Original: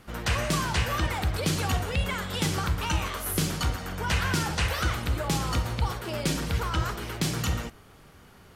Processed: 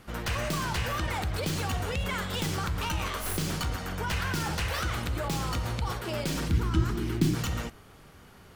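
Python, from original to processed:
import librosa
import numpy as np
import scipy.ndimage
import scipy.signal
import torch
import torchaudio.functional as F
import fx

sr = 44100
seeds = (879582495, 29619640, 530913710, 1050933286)

p1 = fx.tracing_dist(x, sr, depth_ms=0.064)
p2 = fx.low_shelf_res(p1, sr, hz=410.0, db=8.5, q=3.0, at=(6.49, 7.35))
p3 = fx.over_compress(p2, sr, threshold_db=-31.0, ratio=-1.0)
p4 = p2 + (p3 * librosa.db_to_amplitude(-3.0))
y = p4 * librosa.db_to_amplitude(-6.5)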